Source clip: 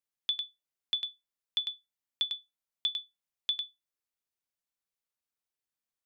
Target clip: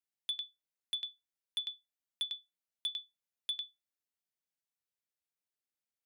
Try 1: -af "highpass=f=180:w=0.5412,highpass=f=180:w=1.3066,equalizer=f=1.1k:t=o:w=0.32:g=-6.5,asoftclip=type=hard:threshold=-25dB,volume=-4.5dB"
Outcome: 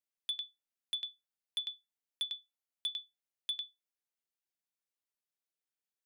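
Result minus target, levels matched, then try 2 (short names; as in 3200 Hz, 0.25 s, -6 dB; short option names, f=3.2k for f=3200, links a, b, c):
125 Hz band -7.0 dB
-af "highpass=f=64:w=0.5412,highpass=f=64:w=1.3066,equalizer=f=1.1k:t=o:w=0.32:g=-6.5,asoftclip=type=hard:threshold=-25dB,volume=-4.5dB"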